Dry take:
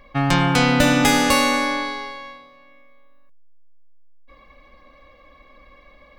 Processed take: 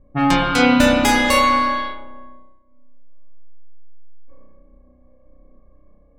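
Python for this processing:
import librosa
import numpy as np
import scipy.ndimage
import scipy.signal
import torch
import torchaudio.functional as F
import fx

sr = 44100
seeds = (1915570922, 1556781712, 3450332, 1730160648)

y = fx.dereverb_blind(x, sr, rt60_s=1.2)
y = fx.rev_spring(y, sr, rt60_s=1.8, pass_ms=(32,), chirp_ms=45, drr_db=-3.5)
y = fx.env_lowpass(y, sr, base_hz=310.0, full_db=-15.5)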